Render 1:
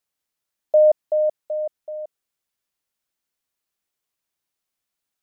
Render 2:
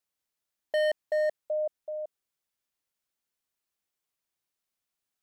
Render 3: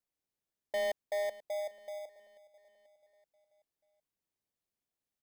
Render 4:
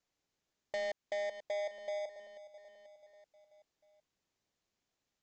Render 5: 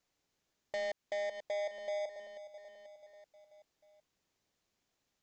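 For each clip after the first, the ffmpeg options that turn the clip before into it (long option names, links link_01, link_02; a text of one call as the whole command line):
ffmpeg -i in.wav -af "asoftclip=type=hard:threshold=-20dB,volume=-4dB" out.wav
ffmpeg -i in.wav -filter_complex "[0:a]aecho=1:1:486|972|1458|1944:0.112|0.0583|0.0303|0.0158,asplit=2[link_01][link_02];[link_02]acrusher=samples=31:mix=1:aa=0.000001,volume=-7dB[link_03];[link_01][link_03]amix=inputs=2:normalize=0,volume=-8dB" out.wav
ffmpeg -i in.wav -filter_complex "[0:a]acrossover=split=1000|2800[link_01][link_02][link_03];[link_01]acompressor=threshold=-44dB:ratio=4[link_04];[link_02]acompressor=threshold=-49dB:ratio=4[link_05];[link_03]acompressor=threshold=-54dB:ratio=4[link_06];[link_04][link_05][link_06]amix=inputs=3:normalize=0,aresample=16000,asoftclip=type=tanh:threshold=-39dB,aresample=44100,volume=8dB" out.wav
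ffmpeg -i in.wav -af "alimiter=level_in=11dB:limit=-24dB:level=0:latency=1:release=95,volume=-11dB,volume=3.5dB" out.wav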